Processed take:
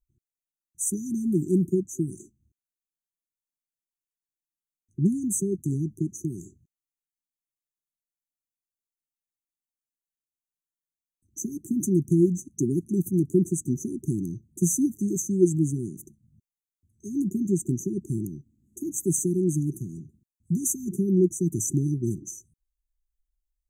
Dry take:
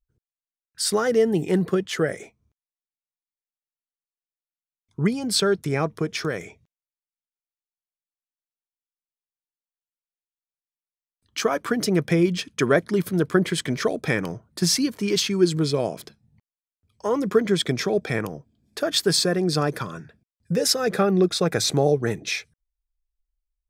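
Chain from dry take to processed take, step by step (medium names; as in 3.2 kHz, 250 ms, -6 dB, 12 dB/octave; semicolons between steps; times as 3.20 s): brick-wall FIR band-stop 390–5900 Hz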